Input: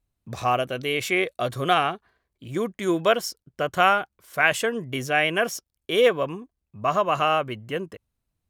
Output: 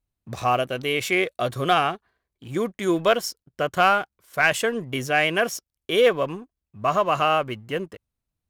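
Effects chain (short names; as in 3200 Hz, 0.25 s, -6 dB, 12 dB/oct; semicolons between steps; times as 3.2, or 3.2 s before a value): sample leveller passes 1; gain -2.5 dB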